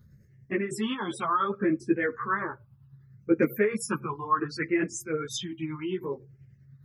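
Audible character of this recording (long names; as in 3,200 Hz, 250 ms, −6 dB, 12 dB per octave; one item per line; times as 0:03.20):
phaser sweep stages 6, 0.66 Hz, lowest notch 480–1,000 Hz
tremolo triangle 10 Hz, depth 55%
a shimmering, thickened sound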